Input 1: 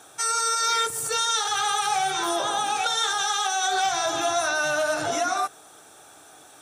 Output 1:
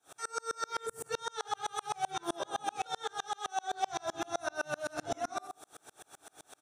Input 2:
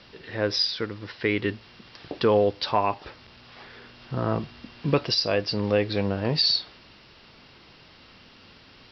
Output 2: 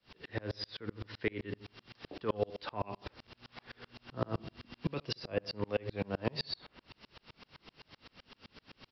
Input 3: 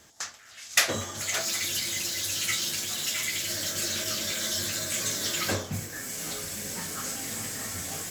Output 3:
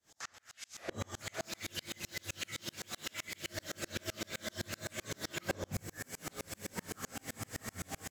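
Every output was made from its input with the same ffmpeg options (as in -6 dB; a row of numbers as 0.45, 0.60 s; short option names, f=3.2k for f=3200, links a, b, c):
-filter_complex "[0:a]acrossover=split=310|720|2700[a][b][c][d];[a]acompressor=threshold=-32dB:ratio=4[e];[b]acompressor=threshold=-33dB:ratio=4[f];[c]acompressor=threshold=-37dB:ratio=4[g];[d]acompressor=threshold=-42dB:ratio=4[h];[e][f][g][h]amix=inputs=4:normalize=0,asplit=2[i][j];[j]adelay=75,lowpass=f=1.5k:p=1,volume=-10.5dB,asplit=2[k][l];[l]adelay=75,lowpass=f=1.5k:p=1,volume=0.47,asplit=2[m][n];[n]adelay=75,lowpass=f=1.5k:p=1,volume=0.47,asplit=2[o][p];[p]adelay=75,lowpass=f=1.5k:p=1,volume=0.47,asplit=2[q][r];[r]adelay=75,lowpass=f=1.5k:p=1,volume=0.47[s];[i][k][m][o][q][s]amix=inputs=6:normalize=0,aeval=exprs='val(0)*pow(10,-36*if(lt(mod(-7.8*n/s,1),2*abs(-7.8)/1000),1-mod(-7.8*n/s,1)/(2*abs(-7.8)/1000),(mod(-7.8*n/s,1)-2*abs(-7.8)/1000)/(1-2*abs(-7.8)/1000))/20)':c=same,volume=2.5dB"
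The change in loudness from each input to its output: -14.0, -14.5, -14.0 LU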